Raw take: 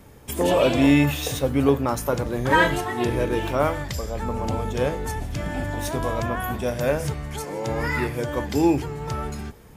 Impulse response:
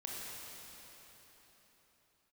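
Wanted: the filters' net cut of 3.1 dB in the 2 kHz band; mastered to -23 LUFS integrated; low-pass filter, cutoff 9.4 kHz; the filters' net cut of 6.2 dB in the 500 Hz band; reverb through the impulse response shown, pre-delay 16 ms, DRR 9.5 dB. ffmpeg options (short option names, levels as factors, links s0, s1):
-filter_complex "[0:a]lowpass=9400,equalizer=f=500:t=o:g=-7.5,equalizer=f=2000:t=o:g=-3.5,asplit=2[s0][s1];[1:a]atrim=start_sample=2205,adelay=16[s2];[s1][s2]afir=irnorm=-1:irlink=0,volume=0.316[s3];[s0][s3]amix=inputs=2:normalize=0,volume=1.41"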